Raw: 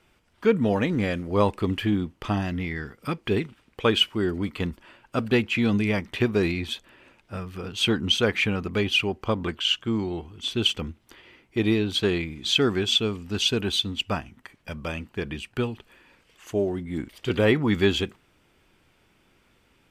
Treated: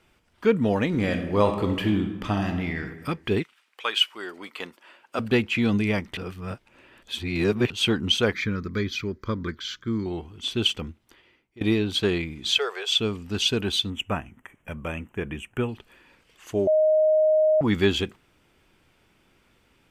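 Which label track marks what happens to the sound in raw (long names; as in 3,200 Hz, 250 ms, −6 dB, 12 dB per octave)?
0.870000	2.800000	thrown reverb, RT60 1.1 s, DRR 5.5 dB
3.420000	5.180000	high-pass filter 1,400 Hz → 350 Hz
6.170000	7.700000	reverse
8.330000	10.060000	phaser with its sweep stopped centre 2,800 Hz, stages 6
10.630000	11.610000	fade out, to −23.5 dB
12.580000	12.990000	elliptic high-pass filter 440 Hz
13.900000	15.690000	Butterworth band-reject 4,500 Hz, Q 1.2
16.670000	17.610000	beep over 622 Hz −16 dBFS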